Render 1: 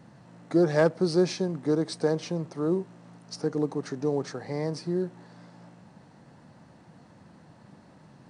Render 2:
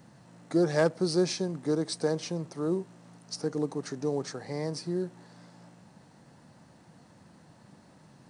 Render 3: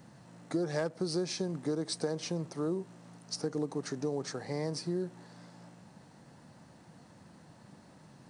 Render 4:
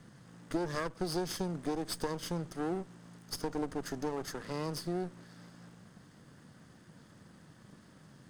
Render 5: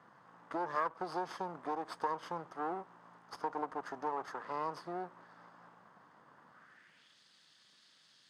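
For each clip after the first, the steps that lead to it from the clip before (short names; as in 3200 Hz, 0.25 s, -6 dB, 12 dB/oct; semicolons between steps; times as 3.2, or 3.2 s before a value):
high shelf 5300 Hz +10.5 dB; gain -3 dB
compressor 6:1, threshold -29 dBFS, peak gain reduction 10 dB
minimum comb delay 0.62 ms
band-pass sweep 1000 Hz -> 3900 Hz, 6.47–7.19; gain +8 dB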